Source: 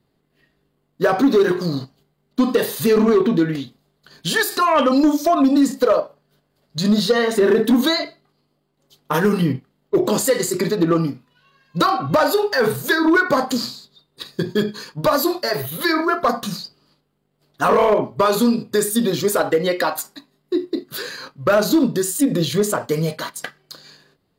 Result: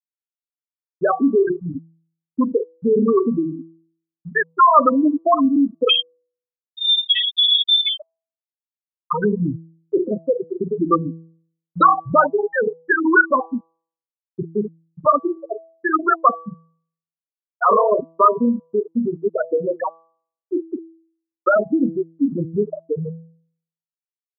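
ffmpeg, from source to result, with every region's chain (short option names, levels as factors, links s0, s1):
-filter_complex "[0:a]asettb=1/sr,asplit=3[s0][s1][s2];[s0]atrim=end=5.894[s3];[s1]atrim=start=5.89:end=7.99,asetpts=PTS-STARTPTS,afade=t=in:d=0.004:c=qsin,afade=t=out:st=2.096:d=0.004:c=qsin,equalizer=f=1100:w=1.7:g=5,adynamicsmooth=sensitivity=1:basefreq=610,lowpass=f=3200:t=q:w=0.5098,lowpass=f=3200:t=q:w=0.6013,lowpass=f=3200:t=q:w=0.9,lowpass=f=3200:t=q:w=2.563,afreqshift=-3800[s4];[s2]atrim=start=7.986[s5];[s3][s4]acrossfade=d=0.004:c1=hsin:c2=qsin[s6];[s6][s5]acrossfade=d=0.004:c1=qsin:c2=hsin,afftfilt=real='re*gte(hypot(re,im),0.631)':imag='im*gte(hypot(re,im),0.631)':win_size=1024:overlap=0.75,equalizer=f=1200:t=o:w=0.7:g=10.5,bandreject=f=163.9:t=h:w=4,bandreject=f=327.8:t=h:w=4,bandreject=f=491.7:t=h:w=4,bandreject=f=655.6:t=h:w=4,bandreject=f=819.5:t=h:w=4,bandreject=f=983.4:t=h:w=4,bandreject=f=1147.3:t=h:w=4,volume=0.841"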